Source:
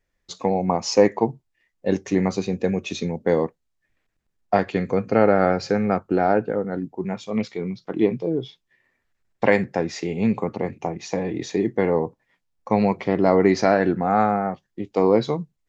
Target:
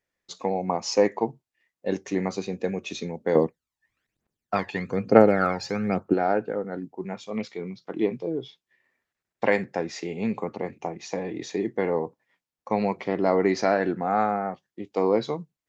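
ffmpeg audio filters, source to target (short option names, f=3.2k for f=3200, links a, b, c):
-filter_complex "[0:a]asettb=1/sr,asplit=3[a][b][c];[a]atrim=end=3.354[d];[b]atrim=start=3.35:end=6.14,asetpts=PTS-STARTPTS,afade=t=in:d=0.004:c=qsin,afade=t=out:st=2.786:d=0.004:c=qsin,aphaser=in_gain=1:out_gain=1:delay=1.2:decay=0.67:speed=1.1:type=triangular[e];[c]atrim=start=6.136[f];[d][e]acrossfade=d=0.004:c1=hsin:c2=qsin[g];[g][f]acrossfade=d=0.004:c1=qsin:c2=hsin,highpass=f=230:p=1,volume=-3.5dB"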